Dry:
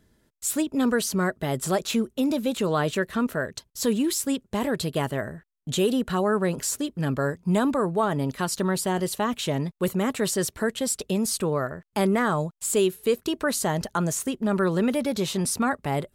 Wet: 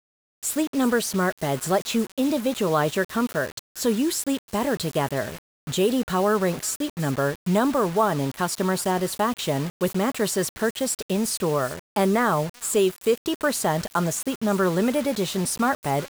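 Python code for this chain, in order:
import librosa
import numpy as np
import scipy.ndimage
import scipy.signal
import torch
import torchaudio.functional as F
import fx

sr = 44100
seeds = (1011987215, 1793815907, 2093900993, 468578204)

y = fx.echo_wet_highpass(x, sr, ms=365, feedback_pct=41, hz=1500.0, wet_db=-16.5)
y = fx.dynamic_eq(y, sr, hz=830.0, q=0.78, threshold_db=-36.0, ratio=4.0, max_db=4)
y = fx.quant_dither(y, sr, seeds[0], bits=6, dither='none')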